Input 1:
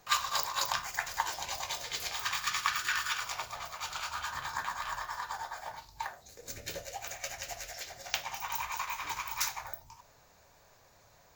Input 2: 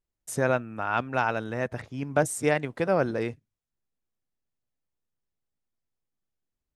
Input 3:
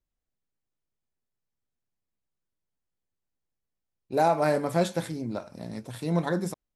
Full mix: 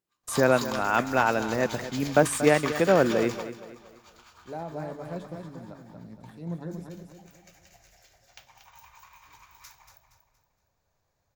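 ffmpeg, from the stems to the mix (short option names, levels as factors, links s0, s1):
-filter_complex "[0:a]volume=0.631,asplit=2[s0][s1];[s1]volume=0.2[s2];[1:a]highpass=220,volume=1.26,asplit=3[s3][s4][s5];[s4]volume=0.224[s6];[2:a]equalizer=f=10000:w=0.39:g=-8.5,acrossover=split=490[s7][s8];[s7]aeval=exprs='val(0)*(1-0.5/2+0.5/2*cos(2*PI*1.6*n/s))':c=same[s9];[s8]aeval=exprs='val(0)*(1-0.5/2-0.5/2*cos(2*PI*1.6*n/s))':c=same[s10];[s9][s10]amix=inputs=2:normalize=0,adelay=350,volume=0.224,asplit=2[s11][s12];[s12]volume=0.531[s13];[s5]apad=whole_len=500923[s14];[s0][s14]sidechaingate=range=0.00398:threshold=0.00501:ratio=16:detection=peak[s15];[s2][s6][s13]amix=inputs=3:normalize=0,aecho=0:1:234|468|702|936|1170:1|0.38|0.144|0.0549|0.0209[s16];[s15][s3][s11][s16]amix=inputs=4:normalize=0,lowshelf=f=270:g=9.5"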